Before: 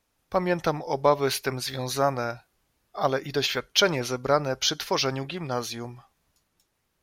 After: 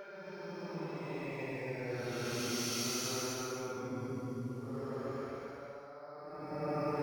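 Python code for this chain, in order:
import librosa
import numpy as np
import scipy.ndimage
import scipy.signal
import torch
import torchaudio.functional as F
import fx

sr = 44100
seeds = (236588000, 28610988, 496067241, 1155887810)

p1 = scipy.signal.sosfilt(scipy.signal.butter(2, 140.0, 'highpass', fs=sr, output='sos'), x)
p2 = fx.peak_eq(p1, sr, hz=3900.0, db=-4.5, octaves=0.28)
p3 = fx.hum_notches(p2, sr, base_hz=50, count=8)
p4 = fx.over_compress(p3, sr, threshold_db=-36.0, ratio=-1.0)
p5 = fx.paulstretch(p4, sr, seeds[0], factor=12.0, window_s=0.1, from_s=3.84)
p6 = p5 + fx.echo_single(p5, sr, ms=269, db=-4.0, dry=0)
p7 = np.interp(np.arange(len(p6)), np.arange(len(p6))[::2], p6[::2])
y = F.gain(torch.from_numpy(p7), -5.0).numpy()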